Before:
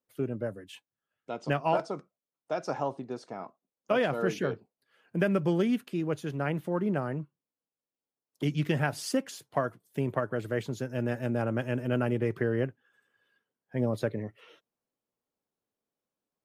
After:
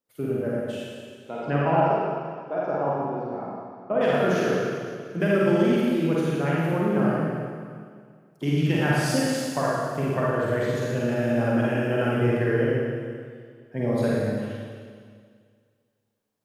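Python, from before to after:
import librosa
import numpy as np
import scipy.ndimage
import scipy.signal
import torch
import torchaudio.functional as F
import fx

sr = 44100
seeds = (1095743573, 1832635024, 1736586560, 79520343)

y = fx.lowpass(x, sr, hz=fx.line((1.3, 2300.0), (4.0, 1000.0)), slope=12, at=(1.3, 4.0), fade=0.02)
y = fx.rev_schroeder(y, sr, rt60_s=2.0, comb_ms=38, drr_db=-6.5)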